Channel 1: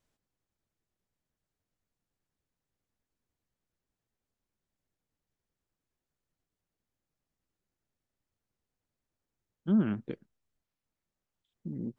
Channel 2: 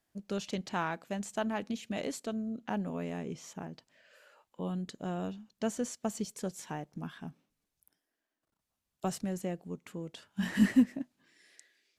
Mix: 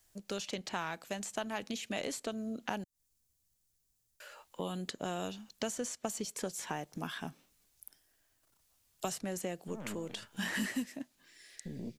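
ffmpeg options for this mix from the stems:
ffmpeg -i stem1.wav -i stem2.wav -filter_complex "[0:a]bass=frequency=250:gain=11,treble=frequency=4000:gain=13,aeval=exprs='(tanh(12.6*val(0)+0.6)-tanh(0.6))/12.6':channel_layout=same,volume=-0.5dB,asplit=2[link_01][link_02];[link_02]volume=-22.5dB[link_03];[1:a]dynaudnorm=framelen=250:gausssize=17:maxgain=5dB,volume=2.5dB,asplit=3[link_04][link_05][link_06];[link_04]atrim=end=2.84,asetpts=PTS-STARTPTS,afade=type=out:start_time=2.836:duration=0.004:curve=hsin[link_07];[link_05]atrim=start=2.84:end=4.2,asetpts=PTS-STARTPTS,volume=0[link_08];[link_06]atrim=start=4.2,asetpts=PTS-STARTPTS,afade=type=in:duration=0.004:curve=hsin[link_09];[link_07][link_08][link_09]concat=n=3:v=0:a=1,asplit=2[link_10][link_11];[link_11]apad=whole_len=528552[link_12];[link_01][link_12]sidechaincompress=threshold=-50dB:ratio=3:attack=16:release=126[link_13];[link_03]aecho=0:1:249:1[link_14];[link_13][link_10][link_14]amix=inputs=3:normalize=0,equalizer=frequency=200:width=0.86:gain=-5.5,acrossover=split=200|2700[link_15][link_16][link_17];[link_15]acompressor=threshold=-50dB:ratio=4[link_18];[link_16]acompressor=threshold=-36dB:ratio=4[link_19];[link_17]acompressor=threshold=-49dB:ratio=4[link_20];[link_18][link_19][link_20]amix=inputs=3:normalize=0,highshelf=frequency=3100:gain=8" out.wav

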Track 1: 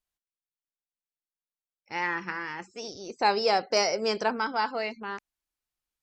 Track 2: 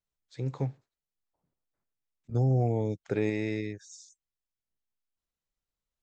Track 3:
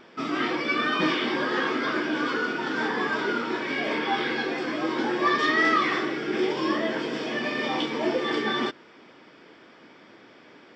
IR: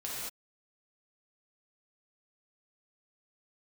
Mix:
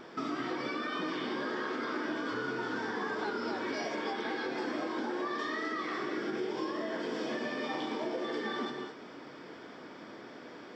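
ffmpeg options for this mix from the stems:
-filter_complex "[0:a]volume=-11.5dB[link_01];[1:a]acompressor=threshold=-34dB:ratio=6,volume=-12dB[link_02];[2:a]alimiter=limit=-23dB:level=0:latency=1:release=231,volume=-0.5dB,asplit=2[link_03][link_04];[link_04]volume=-3dB[link_05];[3:a]atrim=start_sample=2205[link_06];[link_05][link_06]afir=irnorm=-1:irlink=0[link_07];[link_01][link_02][link_03][link_07]amix=inputs=4:normalize=0,equalizer=frequency=2600:width=1.5:gain=-6.5,acompressor=threshold=-37dB:ratio=2"

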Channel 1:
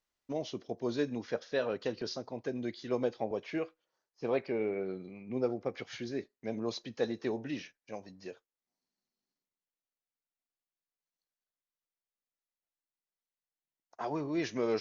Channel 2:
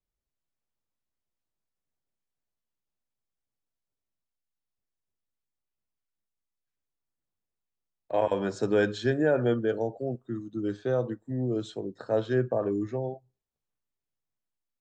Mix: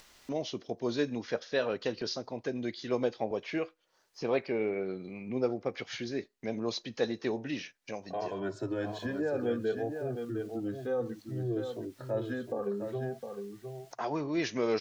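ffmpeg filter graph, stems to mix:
ffmpeg -i stem1.wav -i stem2.wav -filter_complex "[0:a]highshelf=frequency=2600:gain=8.5,acompressor=mode=upward:threshold=-36dB:ratio=2.5,volume=1.5dB[link_01];[1:a]alimiter=limit=-18dB:level=0:latency=1,asplit=2[link_02][link_03];[link_03]adelay=2.1,afreqshift=-0.63[link_04];[link_02][link_04]amix=inputs=2:normalize=1,volume=-2dB,asplit=3[link_05][link_06][link_07];[link_06]volume=-7dB[link_08];[link_07]apad=whole_len=653095[link_09];[link_01][link_09]sidechaincompress=threshold=-37dB:ratio=8:attack=9.4:release=156[link_10];[link_08]aecho=0:1:709:1[link_11];[link_10][link_05][link_11]amix=inputs=3:normalize=0,highshelf=frequency=6600:gain=-10.5" out.wav

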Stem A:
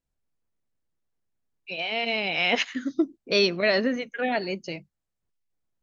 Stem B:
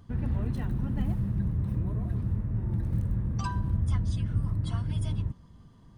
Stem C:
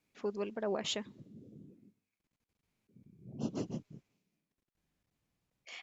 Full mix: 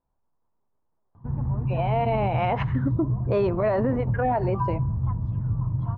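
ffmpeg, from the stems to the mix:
ffmpeg -i stem1.wav -i stem2.wav -i stem3.wav -filter_complex "[0:a]volume=-2.5dB,asplit=2[link_01][link_02];[1:a]equalizer=frequency=130:width_type=o:width=0.34:gain=14.5,acontrast=36,adelay=1150,volume=-15.5dB[link_03];[2:a]acompressor=threshold=-48dB:ratio=1.5,adelay=350,volume=-1.5dB[link_04];[link_02]apad=whole_len=272162[link_05];[link_04][link_05]sidechaingate=range=-57dB:threshold=-41dB:ratio=16:detection=peak[link_06];[link_01][link_03][link_06]amix=inputs=3:normalize=0,acontrast=83,lowpass=frequency=970:width_type=q:width=3.9,alimiter=limit=-15.5dB:level=0:latency=1:release=76" out.wav

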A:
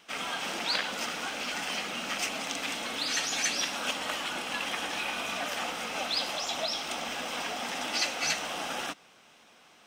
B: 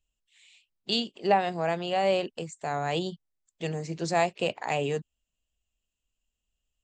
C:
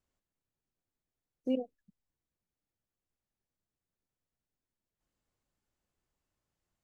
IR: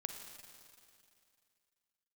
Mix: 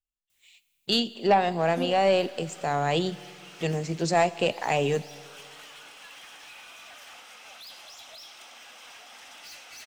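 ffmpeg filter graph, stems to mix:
-filter_complex "[0:a]highpass=frequency=1200:poles=1,asoftclip=type=hard:threshold=-32.5dB,adelay=1500,volume=-12.5dB,asplit=2[link_01][link_02];[link_02]volume=-7.5dB[link_03];[1:a]agate=range=-19dB:threshold=-57dB:ratio=16:detection=peak,aeval=exprs='(tanh(6.31*val(0)+0.1)-tanh(0.1))/6.31':channel_layout=same,volume=2dB,asplit=3[link_04][link_05][link_06];[link_05]volume=-8dB[link_07];[2:a]crystalizer=i=9:c=0,adelay=300,volume=-4.5dB,asplit=2[link_08][link_09];[link_09]volume=-5.5dB[link_10];[link_06]apad=whole_len=500977[link_11];[link_01][link_11]sidechaincompress=threshold=-31dB:ratio=8:attack=16:release=680[link_12];[3:a]atrim=start_sample=2205[link_13];[link_03][link_07][link_10]amix=inputs=3:normalize=0[link_14];[link_14][link_13]afir=irnorm=-1:irlink=0[link_15];[link_12][link_04][link_08][link_15]amix=inputs=4:normalize=0"

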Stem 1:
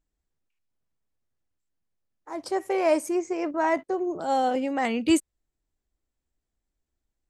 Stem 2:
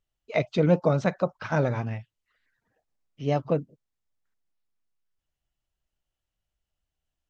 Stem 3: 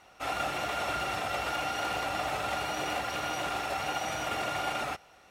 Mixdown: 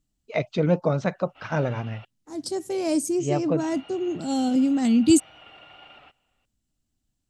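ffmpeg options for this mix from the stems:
ffmpeg -i stem1.wav -i stem2.wav -i stem3.wav -filter_complex "[0:a]equalizer=frequency=125:width_type=o:width=1:gain=11,equalizer=frequency=250:width_type=o:width=1:gain=10,equalizer=frequency=500:width_type=o:width=1:gain=-8,equalizer=frequency=1000:width_type=o:width=1:gain=-9,equalizer=frequency=2000:width_type=o:width=1:gain=-11,equalizer=frequency=4000:width_type=o:width=1:gain=6,equalizer=frequency=8000:width_type=o:width=1:gain=7,volume=0.5dB[link_01];[1:a]volume=-0.5dB[link_02];[2:a]lowpass=frequency=4000:width=0.5412,lowpass=frequency=4000:width=1.3066,equalizer=frequency=2900:width=5.3:gain=12,adelay=1150,volume=-18.5dB,asplit=3[link_03][link_04][link_05];[link_03]atrim=end=2.05,asetpts=PTS-STARTPTS,afade=type=out:start_time=2.046:duration=0.004:curve=hsin[link_06];[link_04]atrim=start=2.05:end=3.59,asetpts=PTS-STARTPTS,volume=0[link_07];[link_05]atrim=start=3.59,asetpts=PTS-STARTPTS,afade=type=in:duration=0.004:curve=hsin[link_08];[link_06][link_07][link_08]concat=n=3:v=0:a=1[link_09];[link_01][link_02][link_09]amix=inputs=3:normalize=0" out.wav

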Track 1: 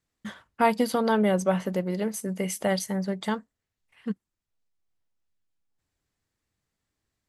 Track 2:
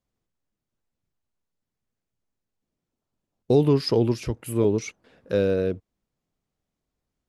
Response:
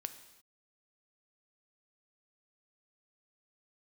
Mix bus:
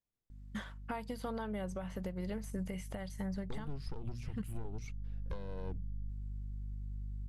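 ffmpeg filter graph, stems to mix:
-filter_complex "[0:a]asubboost=boost=9.5:cutoff=62,acompressor=threshold=-32dB:ratio=12,aeval=exprs='val(0)+0.00282*(sin(2*PI*50*n/s)+sin(2*PI*2*50*n/s)/2+sin(2*PI*3*50*n/s)/3+sin(2*PI*4*50*n/s)/4+sin(2*PI*5*50*n/s)/5)':channel_layout=same,adelay=300,volume=-2dB[link_01];[1:a]bandreject=frequency=60:width_type=h:width=6,bandreject=frequency=120:width_type=h:width=6,bandreject=frequency=180:width_type=h:width=6,bandreject=frequency=240:width_type=h:width=6,acompressor=threshold=-24dB:ratio=8,aeval=exprs='0.237*(cos(1*acos(clip(val(0)/0.237,-1,1)))-cos(1*PI/2))+0.0668*(cos(4*acos(clip(val(0)/0.237,-1,1)))-cos(4*PI/2))':channel_layout=same,volume=-13dB[link_02];[link_01][link_02]amix=inputs=2:normalize=0,acrossover=split=2500[link_03][link_04];[link_04]acompressor=threshold=-50dB:ratio=4:attack=1:release=60[link_05];[link_03][link_05]amix=inputs=2:normalize=0,asubboost=boost=5.5:cutoff=160,alimiter=level_in=5dB:limit=-24dB:level=0:latency=1:release=390,volume=-5dB"

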